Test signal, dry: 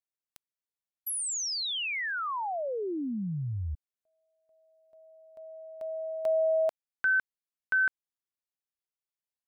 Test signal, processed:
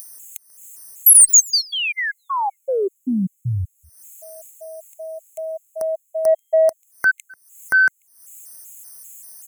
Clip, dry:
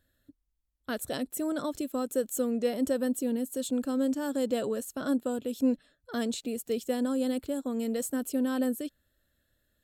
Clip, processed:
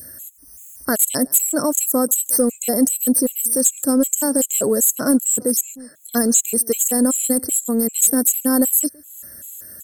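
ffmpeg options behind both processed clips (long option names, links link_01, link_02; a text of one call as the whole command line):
ffmpeg -i in.wav -filter_complex "[0:a]highpass=96,aemphasis=mode=reproduction:type=50kf,aexciter=amount=15.3:drive=9.7:freq=6100,asplit=2[link_01][link_02];[link_02]acompressor=mode=upward:threshold=-34dB:ratio=4:attack=19:release=281:knee=2.83:detection=peak,volume=2.5dB[link_03];[link_01][link_03]amix=inputs=2:normalize=0,asoftclip=type=tanh:threshold=-1dB,alimiter=limit=-10dB:level=0:latency=1:release=26,acontrast=65,adynamicequalizer=threshold=0.0224:dfrequency=1500:dqfactor=1.4:tfrequency=1500:tqfactor=1.4:attack=5:release=100:ratio=0.375:range=2:mode=cutabove:tftype=bell,asplit=2[link_04][link_05];[link_05]adelay=139.9,volume=-25dB,highshelf=frequency=4000:gain=-3.15[link_06];[link_04][link_06]amix=inputs=2:normalize=0,afftfilt=real='re*gt(sin(2*PI*2.6*pts/sr)*(1-2*mod(floor(b*sr/1024/2100),2)),0)':imag='im*gt(sin(2*PI*2.6*pts/sr)*(1-2*mod(floor(b*sr/1024/2100),2)),0)':win_size=1024:overlap=0.75" out.wav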